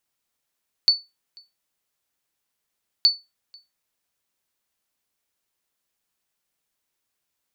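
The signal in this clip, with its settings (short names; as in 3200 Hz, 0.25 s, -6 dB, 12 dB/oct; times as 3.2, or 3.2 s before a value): sonar ping 4480 Hz, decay 0.22 s, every 2.17 s, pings 2, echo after 0.49 s, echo -30 dB -8 dBFS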